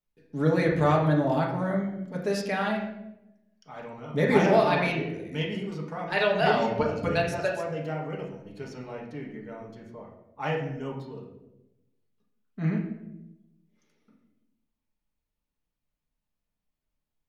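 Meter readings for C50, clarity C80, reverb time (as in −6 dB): 5.0 dB, 8.0 dB, 0.95 s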